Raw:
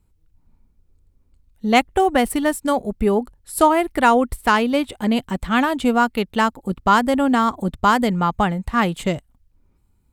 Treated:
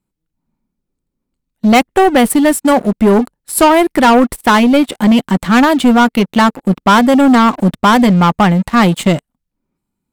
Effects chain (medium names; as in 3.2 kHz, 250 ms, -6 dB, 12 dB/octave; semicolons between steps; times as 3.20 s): resonant low shelf 120 Hz -13 dB, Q 1.5; band-stop 450 Hz, Q 12; waveshaping leveller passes 3